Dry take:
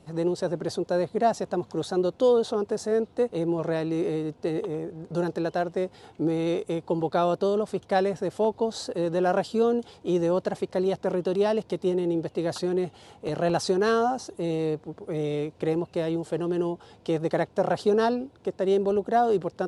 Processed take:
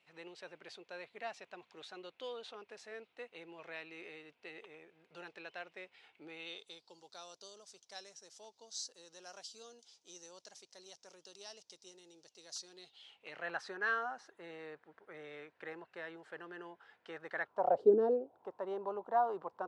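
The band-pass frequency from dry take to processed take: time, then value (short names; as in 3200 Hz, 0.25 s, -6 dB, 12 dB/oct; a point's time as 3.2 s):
band-pass, Q 3.7
6.32 s 2400 Hz
6.99 s 5900 Hz
12.59 s 5900 Hz
13.52 s 1700 Hz
17.4 s 1700 Hz
17.95 s 310 Hz
18.48 s 1000 Hz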